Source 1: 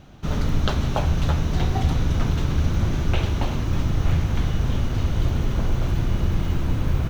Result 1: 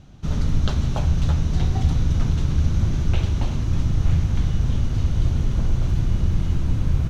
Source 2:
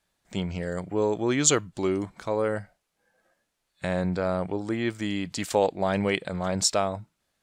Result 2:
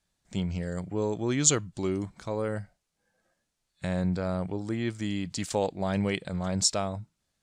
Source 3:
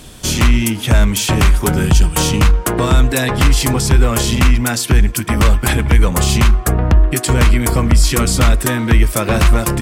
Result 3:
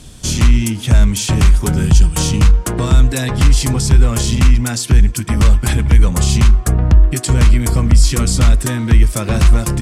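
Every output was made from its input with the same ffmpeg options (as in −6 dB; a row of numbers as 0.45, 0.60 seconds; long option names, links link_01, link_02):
-af "lowpass=9200,bass=frequency=250:gain=8,treble=frequency=4000:gain=7,volume=-6dB"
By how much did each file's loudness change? +1.0, −2.5, +0.5 LU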